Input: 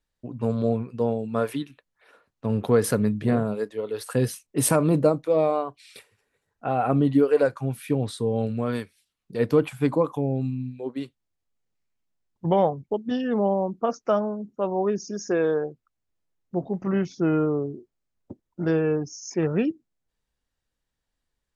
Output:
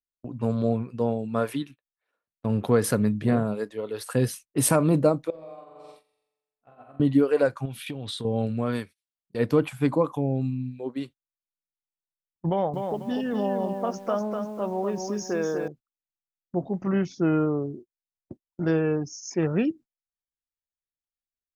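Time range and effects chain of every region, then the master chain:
5.3–7 flutter echo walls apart 7.5 m, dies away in 1.2 s + compressor 12:1, threshold -28 dBFS + resonator 62 Hz, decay 1 s, mix 80%
7.65–8.25 gate with hold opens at -30 dBFS, closes at -35 dBFS + bell 3300 Hz +13 dB 0.83 oct + compressor 10:1, threshold -29 dBFS
12.49–15.68 compressor 1.5:1, threshold -28 dBFS + lo-fi delay 0.246 s, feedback 35%, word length 9-bit, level -5.5 dB
whole clip: gate -41 dBFS, range -24 dB; bell 440 Hz -3 dB 0.28 oct

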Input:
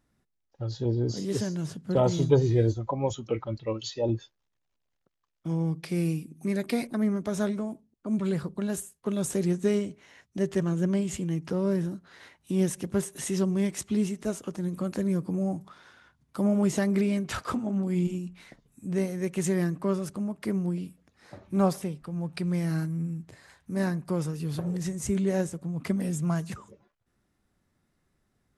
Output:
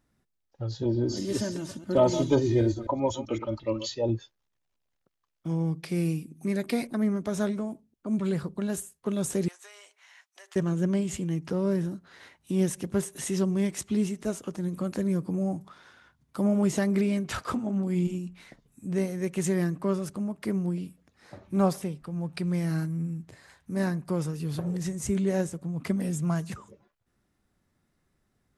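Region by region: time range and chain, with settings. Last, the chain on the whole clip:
0.82–3.95 reverse delay 0.128 s, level -11.5 dB + comb 3.3 ms, depth 67%
9.48–10.56 inverse Chebyshev high-pass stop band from 180 Hz, stop band 70 dB + compressor 10:1, threshold -45 dBFS
whole clip: dry

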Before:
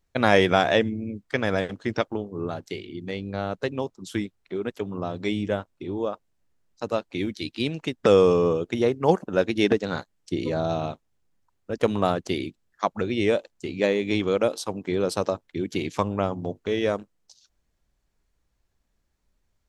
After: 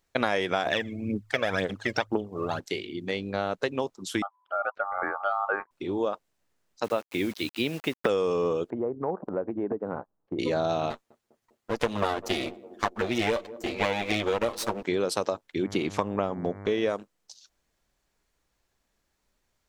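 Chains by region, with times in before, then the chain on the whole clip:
0.66–2.6 de-hum 53.33 Hz, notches 2 + phaser 2 Hz, delay 1.9 ms, feedback 64%
4.22–5.71 formant sharpening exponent 1.5 + LPF 1200 Hz + ring modulator 1000 Hz
6.84–8.09 LPF 3300 Hz + requantised 8-bit, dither none
8.7–10.39 LPF 1100 Hz 24 dB/oct + compressor 3:1, threshold -29 dBFS
10.9–14.83 minimum comb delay 8.6 ms + narrowing echo 0.201 s, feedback 75%, band-pass 350 Hz, level -20.5 dB
15.62–16.89 tilt -1.5 dB/oct + buzz 100 Hz, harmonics 23, -38 dBFS -8 dB/oct
whole clip: low shelf 210 Hz -11.5 dB; compressor 6:1, threshold -27 dBFS; gain +4.5 dB

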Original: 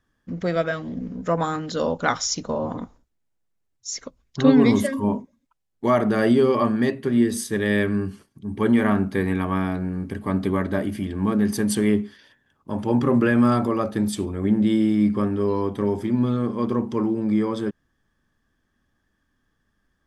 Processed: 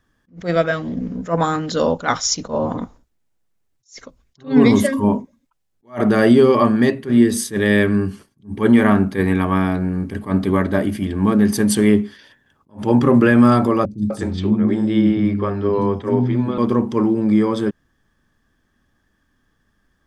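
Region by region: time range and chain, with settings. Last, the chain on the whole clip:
13.85–16.58 air absorption 92 m + three bands offset in time lows, highs, mids 60/250 ms, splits 270/5100 Hz
whole clip: maximiser +7 dB; attack slew limiter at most 240 dB/s; gain -1 dB

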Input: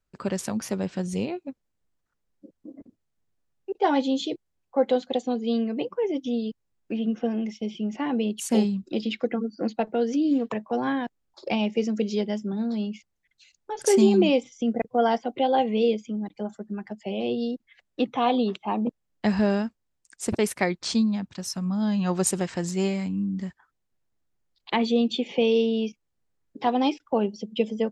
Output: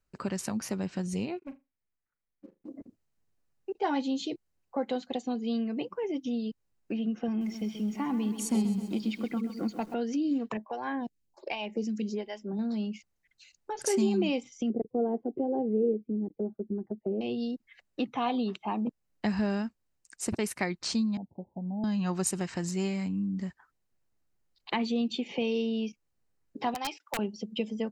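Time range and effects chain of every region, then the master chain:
1.38–2.69 ladder low-pass 2600 Hz, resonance 50% + sample leveller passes 2 + flutter echo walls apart 6.8 m, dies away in 0.21 s
7.28–9.94 comb 0.9 ms, depth 48% + dynamic EQ 2300 Hz, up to -4 dB, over -45 dBFS, Q 1.1 + lo-fi delay 0.13 s, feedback 55%, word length 8-bit, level -11 dB
10.57–12.59 bell 1300 Hz -11 dB 0.2 oct + photocell phaser 1.3 Hz
14.7–17.21 gate -46 dBFS, range -8 dB + synth low-pass 410 Hz, resonance Q 3.1
21.17–21.84 steep low-pass 870 Hz 96 dB/oct + tilt +2.5 dB/oct
26.74–27.19 HPF 760 Hz + wrapped overs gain 20 dB
whole clip: notch 3400 Hz, Q 11; dynamic EQ 520 Hz, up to -6 dB, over -37 dBFS, Q 1.9; compressor 1.5:1, threshold -35 dBFS

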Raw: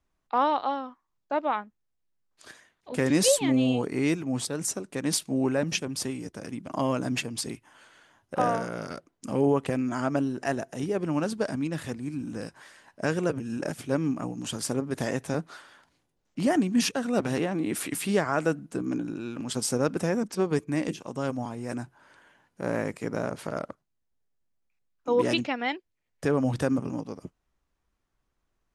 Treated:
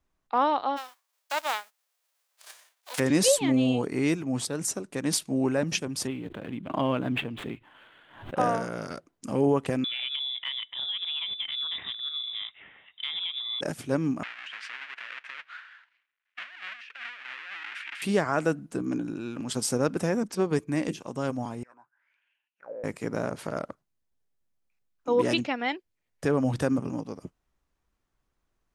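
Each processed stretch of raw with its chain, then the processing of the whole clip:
0.76–2.98 spectral whitening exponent 0.3 + HPF 550 Hz 24 dB/oct
6.07–8.37 median filter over 9 samples + resonant high shelf 4300 Hz -8.5 dB, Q 3 + backwards sustainer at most 94 dB/s
9.84–13.61 inverted band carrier 3700 Hz + compressor, threshold -28 dBFS + HPF 64 Hz
14.23–18.02 half-waves squared off + Butterworth band-pass 2100 Hz, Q 1.5 + negative-ratio compressor -41 dBFS
21.63–22.84 half-wave gain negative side -3 dB + auto-wah 500–2800 Hz, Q 9.4, down, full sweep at -26.5 dBFS
whole clip: dry

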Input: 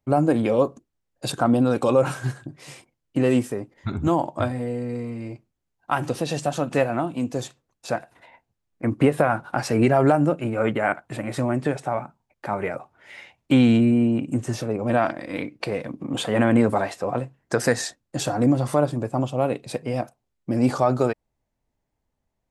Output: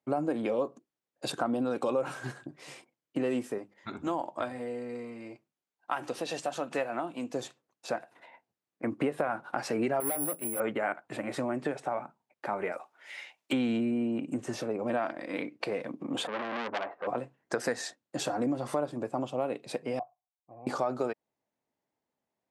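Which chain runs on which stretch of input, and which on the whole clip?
3.58–7.34 low shelf 470 Hz -6.5 dB + notches 50/100/150/200 Hz
10–10.6 tube stage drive 20 dB, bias 0.45 + careless resampling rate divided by 4×, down none, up zero stuff + upward expander, over -26 dBFS
12.72–13.53 HPF 640 Hz 6 dB/oct + high shelf 3100 Hz +9 dB
16.27–17.07 LPF 1300 Hz 24 dB/oct + tilt +2.5 dB/oct + core saturation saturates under 3000 Hz
19.99–20.67 vocal tract filter a + resonant low shelf 160 Hz +8 dB, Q 3
whole clip: HPF 240 Hz 12 dB/oct; high shelf 6400 Hz -7 dB; compressor 2.5:1, threshold -26 dBFS; gain -3 dB

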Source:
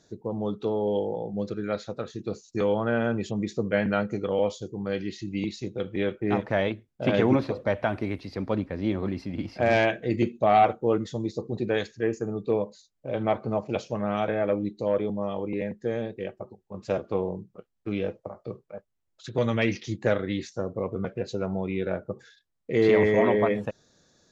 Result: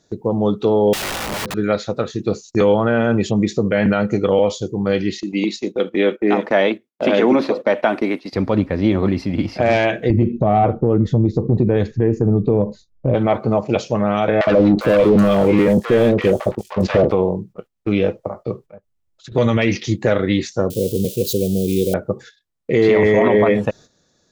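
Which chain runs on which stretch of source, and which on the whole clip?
0.93–1.54 LPF 1300 Hz + wrapped overs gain 32 dB
5.2–8.33 HPF 220 Hz 24 dB/oct + gate -43 dBFS, range -11 dB
10.1–13.15 tilt -4.5 dB/oct + compressor 2.5:1, threshold -25 dBFS
14.41–17.12 sample leveller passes 3 + compressor 3:1, threshold -21 dBFS + three bands offset in time mids, lows, highs 60/400 ms, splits 840/5800 Hz
18.65–19.32 low shelf 170 Hz +9 dB + compressor 16:1, threshold -45 dBFS
20.7–21.94 switching spikes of -28.5 dBFS + Chebyshev band-stop 480–3100 Hz, order 3
whole clip: gate -49 dBFS, range -11 dB; notch 1600 Hz, Q 26; maximiser +16.5 dB; gain -4.5 dB

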